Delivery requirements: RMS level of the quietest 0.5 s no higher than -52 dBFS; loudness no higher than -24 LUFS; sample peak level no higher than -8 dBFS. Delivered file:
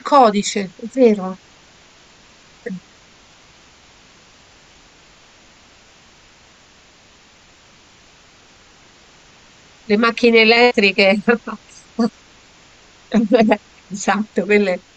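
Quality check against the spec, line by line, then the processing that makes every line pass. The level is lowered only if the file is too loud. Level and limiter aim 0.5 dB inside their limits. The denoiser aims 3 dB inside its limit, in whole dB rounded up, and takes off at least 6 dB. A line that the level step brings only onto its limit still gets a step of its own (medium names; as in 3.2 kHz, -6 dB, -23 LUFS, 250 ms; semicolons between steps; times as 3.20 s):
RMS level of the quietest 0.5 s -49 dBFS: fail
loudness -15.5 LUFS: fail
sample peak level -2.0 dBFS: fail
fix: trim -9 dB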